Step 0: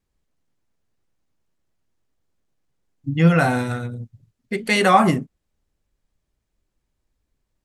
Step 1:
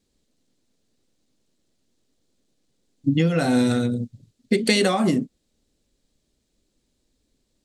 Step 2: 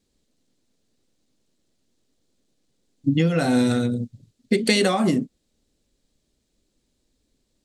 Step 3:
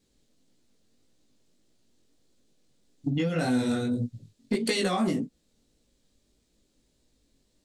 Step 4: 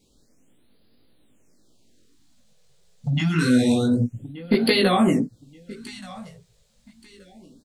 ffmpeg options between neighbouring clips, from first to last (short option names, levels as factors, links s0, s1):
-af "acompressor=threshold=0.0708:ratio=8,equalizer=f=250:t=o:w=1:g=11,equalizer=f=500:t=o:w=1:g=7,equalizer=f=1000:t=o:w=1:g=-3,equalizer=f=4000:t=o:w=1:g=11,equalizer=f=8000:t=o:w=1:g=9"
-af anull
-af "acompressor=threshold=0.0447:ratio=2.5,flanger=delay=16.5:depth=5.7:speed=1.7,asoftclip=type=tanh:threshold=0.106,volume=1.68"
-af "aecho=1:1:1177|2354:0.119|0.0309,afftfilt=real='re*(1-between(b*sr/1024,270*pow(7200/270,0.5+0.5*sin(2*PI*0.27*pts/sr))/1.41,270*pow(7200/270,0.5+0.5*sin(2*PI*0.27*pts/sr))*1.41))':imag='im*(1-between(b*sr/1024,270*pow(7200/270,0.5+0.5*sin(2*PI*0.27*pts/sr))/1.41,270*pow(7200/270,0.5+0.5*sin(2*PI*0.27*pts/sr))*1.41))':win_size=1024:overlap=0.75,volume=2.51"